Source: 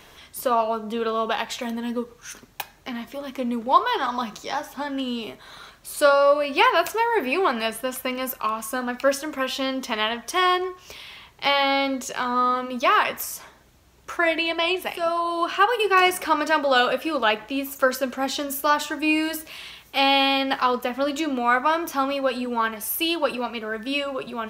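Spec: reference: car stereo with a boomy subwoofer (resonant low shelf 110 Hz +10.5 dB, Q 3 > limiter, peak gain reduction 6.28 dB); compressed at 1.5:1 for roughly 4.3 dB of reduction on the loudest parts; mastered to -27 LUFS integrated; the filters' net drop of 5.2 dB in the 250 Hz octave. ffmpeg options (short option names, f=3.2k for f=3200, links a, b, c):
-af "equalizer=f=250:t=o:g=-4,acompressor=threshold=-24dB:ratio=1.5,lowshelf=f=110:t=q:w=3:g=10.5,volume=0.5dB,alimiter=limit=-14dB:level=0:latency=1"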